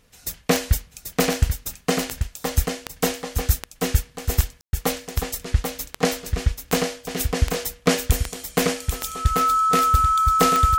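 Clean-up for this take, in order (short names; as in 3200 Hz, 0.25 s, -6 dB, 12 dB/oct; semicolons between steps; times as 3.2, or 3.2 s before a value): de-click; notch 1300 Hz, Q 30; room tone fill 4.61–4.73; inverse comb 0.787 s -5.5 dB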